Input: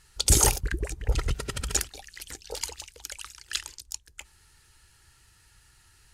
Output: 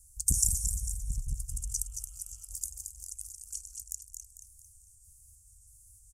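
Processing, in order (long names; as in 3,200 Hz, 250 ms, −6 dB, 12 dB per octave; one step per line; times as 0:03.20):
pitch shifter gated in a rhythm −2.5 semitones, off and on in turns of 315 ms
inverse Chebyshev band-stop filter 190–4,000 Hz, stop band 40 dB
low-shelf EQ 340 Hz −6 dB
in parallel at +1.5 dB: downward compressor, threshold −48 dBFS, peak gain reduction 25.5 dB
on the sum: healed spectral selection 0:01.53–0:02.43, 500–3,900 Hz before
on a send: repeating echo 224 ms, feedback 42%, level −6.5 dB
on the sum: saturating transformer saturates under 210 Hz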